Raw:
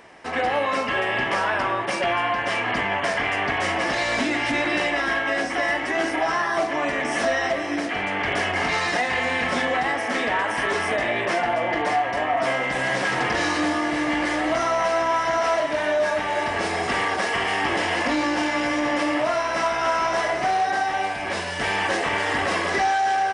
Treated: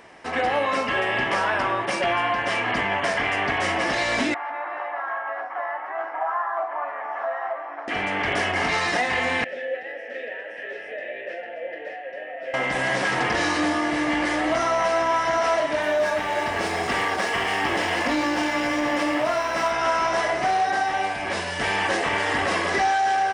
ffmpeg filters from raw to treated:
-filter_complex "[0:a]asettb=1/sr,asplit=3[a][b][c];[a]atrim=end=4.344[d];[b]atrim=start=4.34:end=7.88,asetpts=PTS-STARTPTS,afade=t=in:d=0.004:c=qsin,afade=t=out:st=3.536:d=0.004:c=qsin,asuperpass=centerf=990:order=4:qfactor=1.4[e];[c]atrim=start=7.876[f];[d][e]acrossfade=d=0.004:c1=hsin:c2=qsin[g];[g][f]acrossfade=d=0.004:c1=qsin:c2=hsin,asettb=1/sr,asplit=3[h][i][j];[h]atrim=end=9.444[k];[i]atrim=start=9.44:end=12.54,asetpts=PTS-STARTPTS,afade=t=in:d=0.004:c=qsin,afade=t=out:st=3.096:d=0.004:c=qsin,asplit=3[l][m][n];[l]bandpass=f=530:t=q:w=8,volume=0dB[o];[m]bandpass=f=1.84k:t=q:w=8,volume=-6dB[p];[n]bandpass=f=2.48k:t=q:w=8,volume=-9dB[q];[o][p][q]amix=inputs=3:normalize=0[r];[j]atrim=start=12.536[s];[k][r]acrossfade=d=0.004:c1=hsin:c2=qsin[t];[t][s]acrossfade=d=0.004:c1=qsin:c2=hsin,asettb=1/sr,asplit=3[u][v][w];[u]atrim=end=15.824[x];[v]atrim=start=15.82:end=19.71,asetpts=PTS-STARTPTS,afade=t=in:d=0.004:c=qsin,afade=t=out:st=3.886:d=0.004:c=qsin,aeval=exprs='sgn(val(0))*max(abs(val(0))-0.00562,0)':c=same[y];[w]atrim=start=19.706[z];[x][y]acrossfade=d=0.004:c1=hsin:c2=qsin[aa];[aa][z]acrossfade=d=0.004:c1=qsin:c2=hsin"

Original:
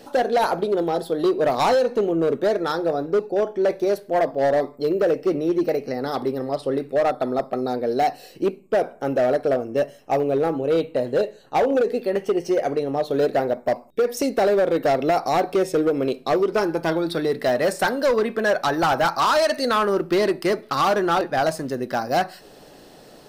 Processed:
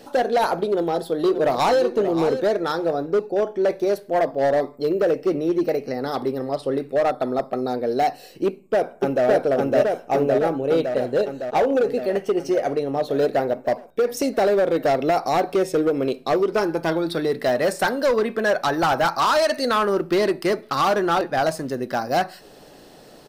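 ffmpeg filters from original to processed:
-filter_complex "[0:a]asplit=2[a][b];[b]afade=t=in:st=0.69:d=0.01,afade=t=out:st=1.83:d=0.01,aecho=0:1:580|1160:0.316228|0.0316228[c];[a][c]amix=inputs=2:normalize=0,asplit=2[d][e];[e]afade=t=in:st=8.46:d=0.01,afade=t=out:st=9.26:d=0.01,aecho=0:1:560|1120|1680|2240|2800|3360|3920|4480|5040|5600|6160|6720:1|0.7|0.49|0.343|0.2401|0.16807|0.117649|0.0823543|0.057648|0.0403536|0.0282475|0.0197733[f];[d][f]amix=inputs=2:normalize=0"

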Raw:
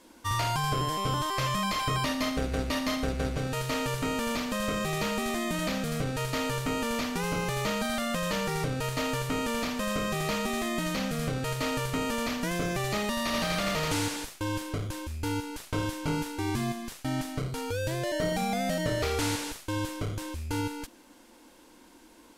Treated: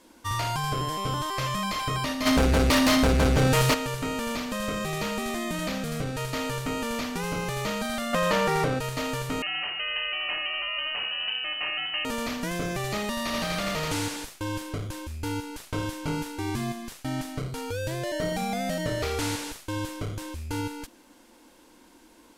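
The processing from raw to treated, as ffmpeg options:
-filter_complex "[0:a]asplit=3[a][b][c];[a]afade=t=out:st=2.25:d=0.02[d];[b]aeval=exprs='0.15*sin(PI/2*2.82*val(0)/0.15)':c=same,afade=t=in:st=2.25:d=0.02,afade=t=out:st=3.73:d=0.02[e];[c]afade=t=in:st=3.73:d=0.02[f];[d][e][f]amix=inputs=3:normalize=0,asettb=1/sr,asplit=3[g][h][i];[g]atrim=end=8.134[j];[h]atrim=start=8.13:end=8.79,asetpts=PTS-STARTPTS,afade=t=in:d=0.004:c=qsin,afade=t=out:st=0.656:d=0.004:c=qsin,equalizer=f=860:w=0.33:g=9[k];[i]atrim=start=8.786[l];[j][k]acrossfade=d=0.004:c1=hsin:c2=qsin[m];[m][l]acrossfade=d=0.004:c1=qsin:c2=hsin,asettb=1/sr,asplit=3[n][o][p];[n]atrim=end=9.424[q];[o]atrim=start=9.42:end=12.05,asetpts=PTS-STARTPTS,afade=t=in:d=0.004:c=qsin,afade=t=out:st=2.626:d=0.004:c=qsin,lowpass=f=2.6k:t=q:w=0.5098,lowpass=f=2.6k:t=q:w=0.6013,lowpass=f=2.6k:t=q:w=0.9,lowpass=f=2.6k:t=q:w=2.563,afreqshift=-3100[r];[p]atrim=start=12.046[s];[q][r]acrossfade=d=0.004:c1=hsin:c2=qsin[t];[t][s]acrossfade=d=0.004:c1=qsin:c2=hsin"

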